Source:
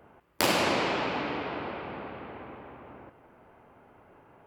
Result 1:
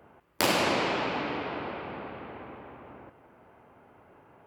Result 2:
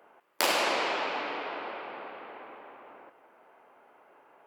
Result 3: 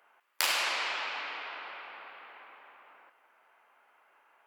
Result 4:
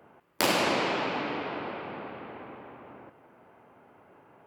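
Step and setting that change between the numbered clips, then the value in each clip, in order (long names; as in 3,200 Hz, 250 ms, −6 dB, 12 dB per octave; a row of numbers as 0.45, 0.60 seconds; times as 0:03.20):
high-pass filter, corner frequency: 48, 470, 1,300, 120 Hertz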